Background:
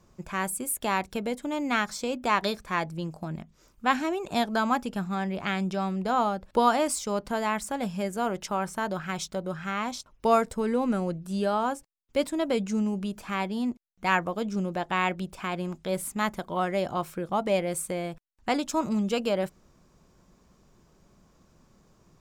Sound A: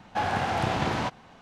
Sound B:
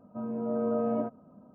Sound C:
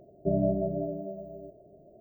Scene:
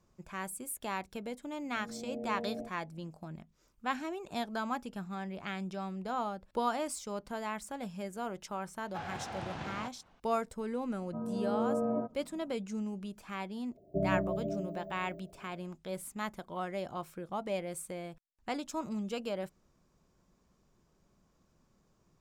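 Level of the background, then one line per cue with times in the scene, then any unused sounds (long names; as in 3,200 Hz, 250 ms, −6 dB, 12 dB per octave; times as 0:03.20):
background −10 dB
0:01.60: mix in B −11 dB + linear-phase brick-wall band-stop 900–1,800 Hz
0:08.79: mix in A −14.5 dB + low-pass filter 10,000 Hz
0:10.98: mix in B −3 dB + low-pass filter 1,800 Hz
0:13.69: mix in C −5 dB, fades 0.10 s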